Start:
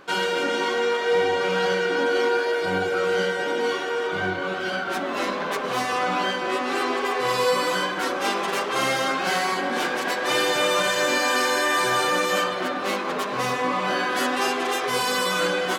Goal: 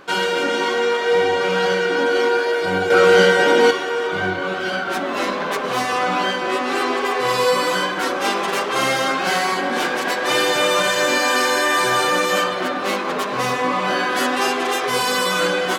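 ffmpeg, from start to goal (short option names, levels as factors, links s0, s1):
-filter_complex "[0:a]asettb=1/sr,asplit=3[s0][s1][s2];[s0]atrim=end=2.904[s3];[s1]atrim=start=2.9:end=3.71,asetpts=PTS-STARTPTS,afade=t=in:d=0.004:c=qsin,afade=t=out:st=0.806:d=0.004:c=qsin,acontrast=87[s4];[s2]atrim=start=3.706[s5];[s3][s4]acrossfade=d=0.004:c1=hsin:c2=qsin[s6];[s6][s5]acrossfade=d=0.004:c1=qsin:c2=hsin,volume=1.58"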